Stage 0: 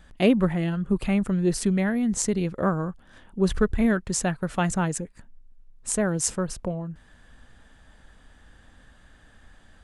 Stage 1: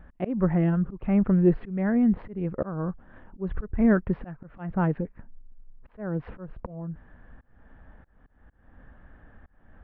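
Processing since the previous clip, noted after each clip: Gaussian low-pass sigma 4.7 samples; slow attack 316 ms; trim +3.5 dB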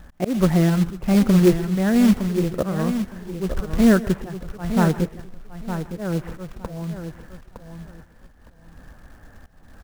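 short-mantissa float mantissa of 2-bit; feedback delay 912 ms, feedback 19%, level -9 dB; on a send at -16.5 dB: reverberation RT60 0.35 s, pre-delay 115 ms; on the sum: trim +5.5 dB

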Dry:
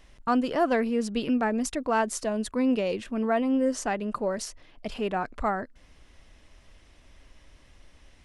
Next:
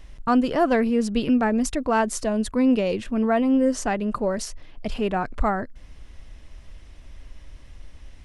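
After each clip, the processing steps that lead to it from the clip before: bass shelf 140 Hz +10.5 dB; trim +3 dB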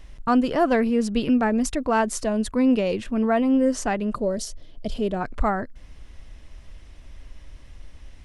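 time-frequency box 4.15–5.21 s, 720–2900 Hz -9 dB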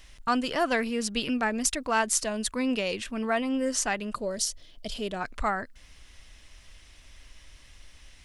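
tilt shelf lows -8 dB, about 1.2 kHz; trim -2 dB

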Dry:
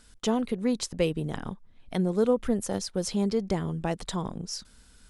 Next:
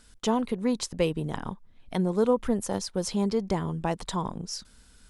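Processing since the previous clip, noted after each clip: dynamic bell 970 Hz, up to +7 dB, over -51 dBFS, Q 3.2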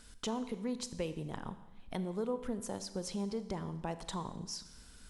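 compression 2:1, threshold -44 dBFS, peak gain reduction 14 dB; Schroeder reverb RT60 1.1 s, combs from 28 ms, DRR 11.5 dB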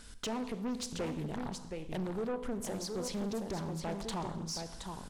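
delay 721 ms -8 dB; saturation -35.5 dBFS, distortion -11 dB; loudspeaker Doppler distortion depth 0.42 ms; trim +4.5 dB

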